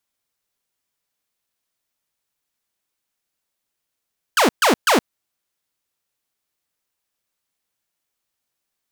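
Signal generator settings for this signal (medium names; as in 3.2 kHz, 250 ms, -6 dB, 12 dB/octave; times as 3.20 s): burst of laser zaps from 1.7 kHz, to 200 Hz, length 0.12 s saw, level -9.5 dB, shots 3, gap 0.13 s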